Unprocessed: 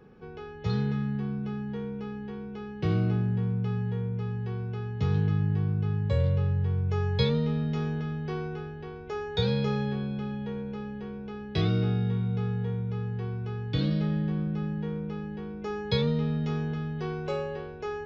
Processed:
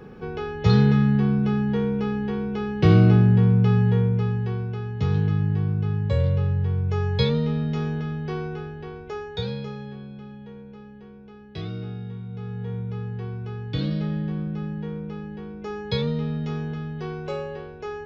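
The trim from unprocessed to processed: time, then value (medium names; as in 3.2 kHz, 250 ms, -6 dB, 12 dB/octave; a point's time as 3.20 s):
3.98 s +11 dB
4.79 s +3.5 dB
8.98 s +3.5 dB
9.75 s -7 dB
12.27 s -7 dB
12.76 s +1 dB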